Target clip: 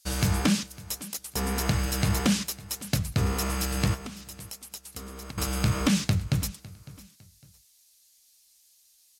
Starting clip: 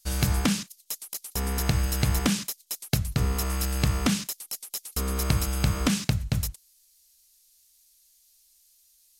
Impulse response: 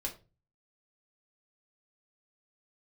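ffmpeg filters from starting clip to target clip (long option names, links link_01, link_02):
-filter_complex "[0:a]highpass=73,highshelf=frequency=12000:gain=-8,asettb=1/sr,asplit=3[link_01][link_02][link_03];[link_01]atrim=end=3.944[link_04];[link_02]atrim=start=3.94:end=5.38,asetpts=PTS-STARTPTS,afade=type=in:duration=0.004:curve=qsin,afade=type=out:start_time=1.436:duration=0.004:curve=qsin,acompressor=threshold=-40dB:ratio=10[link_05];[link_03]atrim=start=5.376[link_06];[link_04][link_05]acrossfade=duration=0.004:curve1=hsin:curve2=qsin[link_07];[link_07][link_06]acrossfade=duration=0.004:curve1=qsin:curve2=hsin,flanger=delay=3.3:depth=8.2:regen=62:speed=1.7:shape=triangular,asoftclip=type=tanh:threshold=-22dB,aecho=1:1:555|1110:0.1|0.031,volume=7.5dB" -ar 44100 -c:a libmp3lame -b:a 128k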